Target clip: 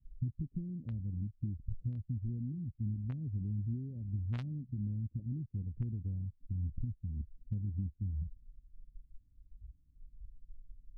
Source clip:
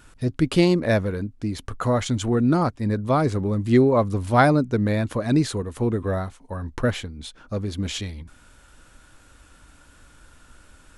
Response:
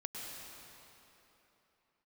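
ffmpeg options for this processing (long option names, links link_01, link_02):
-filter_complex "[0:a]asoftclip=type=tanh:threshold=-11dB,acompressor=threshold=-34dB:ratio=8,afwtdn=0.0316,adynamicequalizer=threshold=0.00316:dfrequency=360:dqfactor=4.6:tfrequency=360:tqfactor=4.6:attack=5:release=100:ratio=0.375:range=2:mode=cutabove:tftype=bell[link_01];[1:a]atrim=start_sample=2205,atrim=end_sample=3969,asetrate=52920,aresample=44100[link_02];[link_01][link_02]afir=irnorm=-1:irlink=0,acrossover=split=200[link_03][link_04];[link_04]acrusher=bits=4:mix=0:aa=0.5[link_05];[link_03][link_05]amix=inputs=2:normalize=0,volume=10dB"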